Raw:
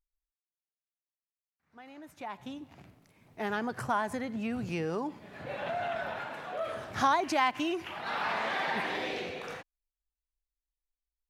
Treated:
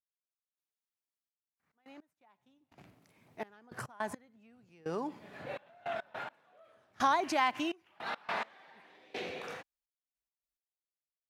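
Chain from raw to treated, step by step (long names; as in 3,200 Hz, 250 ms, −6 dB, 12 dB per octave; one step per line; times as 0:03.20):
high-pass filter 140 Hz 6 dB per octave
0:02.13–0:02.78: noise gate −52 dBFS, range −9 dB
gate pattern "....xxxxx..x.x." 105 BPM −24 dB
level −2 dB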